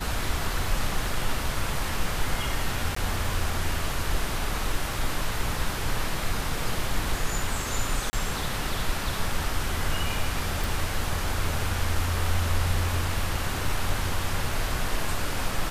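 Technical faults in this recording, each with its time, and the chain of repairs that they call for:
2.95–2.96 s: dropout 14 ms
8.10–8.13 s: dropout 30 ms
10.64 s: pop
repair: de-click; interpolate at 2.95 s, 14 ms; interpolate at 8.10 s, 30 ms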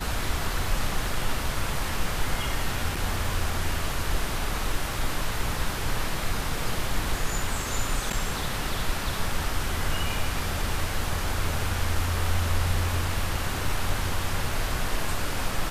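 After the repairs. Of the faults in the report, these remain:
nothing left

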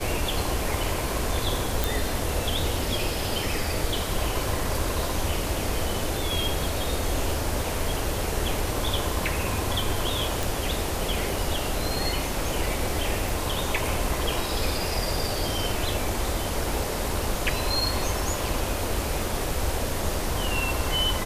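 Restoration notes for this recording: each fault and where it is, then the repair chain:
1.84 s: pop
10.43 s: pop
13.29 s: pop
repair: de-click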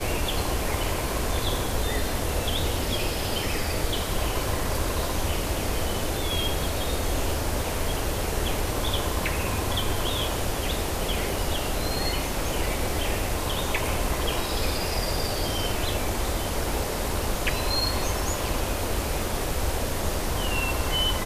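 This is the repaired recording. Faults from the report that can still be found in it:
nothing left

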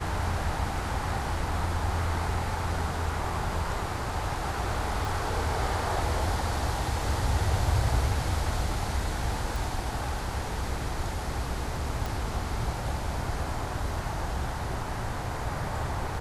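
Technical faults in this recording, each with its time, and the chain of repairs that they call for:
5.05 s: pop
9.56 s: pop
12.06 s: pop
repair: de-click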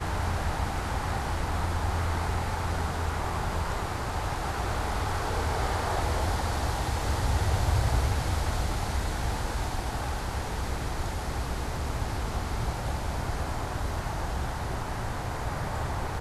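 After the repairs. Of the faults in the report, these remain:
nothing left

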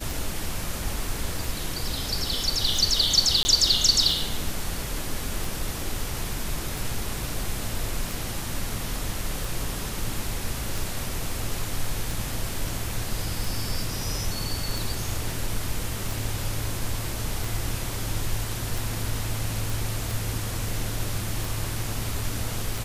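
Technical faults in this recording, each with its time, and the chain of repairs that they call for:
tick 45 rpm
3.43–3.45 s: dropout 20 ms
19.70 s: pop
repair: de-click; interpolate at 3.43 s, 20 ms

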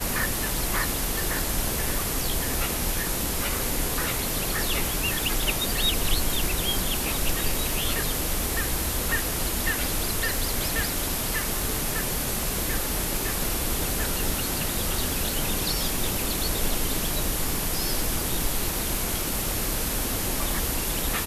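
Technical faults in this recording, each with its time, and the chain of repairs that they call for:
crackle 39 per s -31 dBFS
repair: de-click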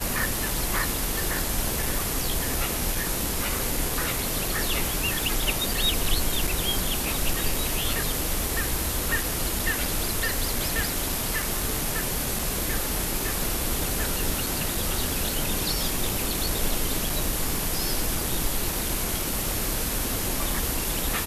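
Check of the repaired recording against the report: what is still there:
nothing left

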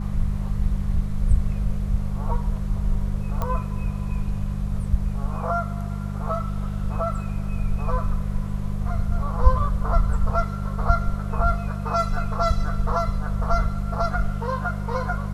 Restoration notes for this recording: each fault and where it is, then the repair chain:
hum 50 Hz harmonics 4 -28 dBFS
3.42 s: pop -14 dBFS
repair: de-click; de-hum 50 Hz, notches 4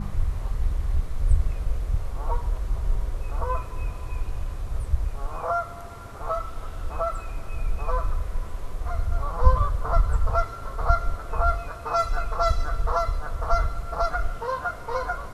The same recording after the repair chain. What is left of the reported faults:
nothing left

